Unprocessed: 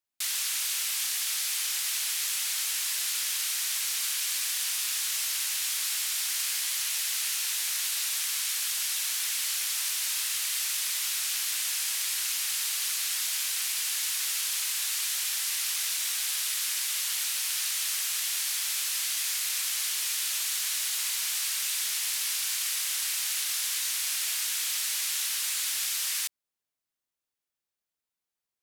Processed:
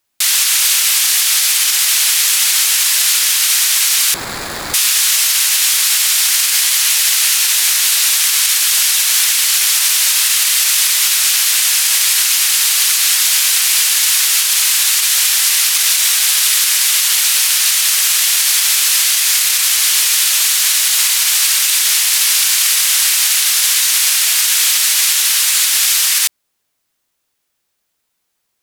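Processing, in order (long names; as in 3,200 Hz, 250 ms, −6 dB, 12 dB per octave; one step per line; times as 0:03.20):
0:04.14–0:04.74: running median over 15 samples
boost into a limiter +20 dB
level −1.5 dB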